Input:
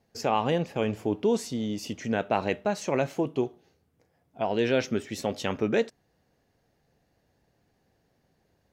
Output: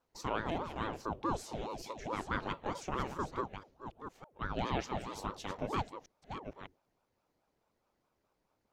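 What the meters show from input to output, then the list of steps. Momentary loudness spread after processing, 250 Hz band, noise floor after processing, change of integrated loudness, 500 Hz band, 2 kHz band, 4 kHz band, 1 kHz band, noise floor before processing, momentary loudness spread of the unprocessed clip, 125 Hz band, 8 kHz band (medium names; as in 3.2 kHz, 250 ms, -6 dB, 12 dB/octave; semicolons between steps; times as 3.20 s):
13 LU, -12.0 dB, -81 dBFS, -10.5 dB, -14.0 dB, -7.5 dB, -9.0 dB, -5.0 dB, -72 dBFS, 7 LU, -8.0 dB, -9.5 dB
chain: chunks repeated in reverse 606 ms, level -8.5 dB; hum notches 50/100/150/200 Hz; ring modulator with a swept carrier 470 Hz, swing 65%, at 4.7 Hz; trim -7.5 dB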